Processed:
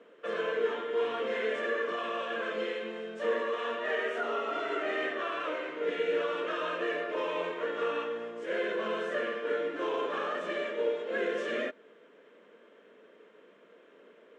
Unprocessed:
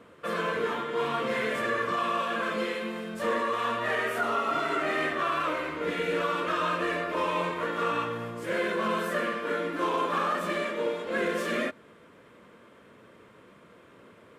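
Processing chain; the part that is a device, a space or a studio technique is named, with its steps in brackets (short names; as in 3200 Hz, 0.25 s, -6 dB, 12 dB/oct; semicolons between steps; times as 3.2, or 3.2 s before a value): television speaker (speaker cabinet 220–6800 Hz, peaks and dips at 440 Hz +9 dB, 620 Hz +4 dB, 1100 Hz -3 dB, 1700 Hz +4 dB, 3000 Hz +5 dB, 4600 Hz -6 dB); gain -7 dB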